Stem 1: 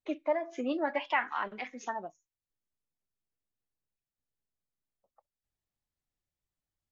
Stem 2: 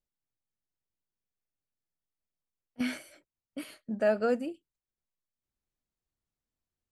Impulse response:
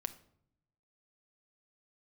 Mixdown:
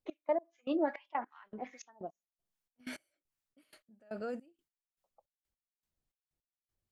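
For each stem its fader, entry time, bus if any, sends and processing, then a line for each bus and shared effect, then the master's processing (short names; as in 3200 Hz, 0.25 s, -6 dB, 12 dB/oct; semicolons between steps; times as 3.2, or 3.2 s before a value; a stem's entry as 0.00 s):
+3.0 dB, 0.00 s, send -22.5 dB, harmonic tremolo 2.5 Hz, depth 100%, crossover 850 Hz
-3.5 dB, 0.00 s, no send, limiter -27.5 dBFS, peak gain reduction 11 dB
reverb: on, RT60 0.70 s, pre-delay 6 ms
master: step gate "x..x...xx" 157 bpm -24 dB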